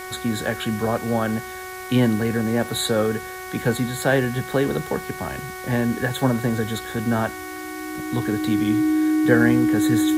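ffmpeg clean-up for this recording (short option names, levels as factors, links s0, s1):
-af "bandreject=f=371.3:t=h:w=4,bandreject=f=742.6:t=h:w=4,bandreject=f=1113.9:t=h:w=4,bandreject=f=1485.2:t=h:w=4,bandreject=f=1856.5:t=h:w=4,bandreject=f=2227.8:t=h:w=4,bandreject=f=310:w=30,afwtdn=0.0089"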